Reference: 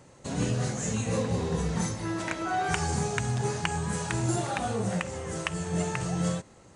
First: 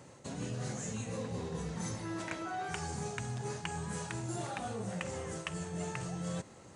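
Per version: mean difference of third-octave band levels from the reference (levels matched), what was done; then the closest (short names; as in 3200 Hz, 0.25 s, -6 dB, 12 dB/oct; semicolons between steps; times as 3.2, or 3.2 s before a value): 2.0 dB: HPF 74 Hz; reverse; compressor 6:1, threshold -36 dBFS, peak gain reduction 13 dB; reverse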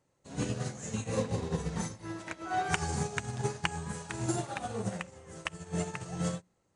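4.0 dB: notches 60/120/180/240 Hz; upward expander 2.5:1, over -39 dBFS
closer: first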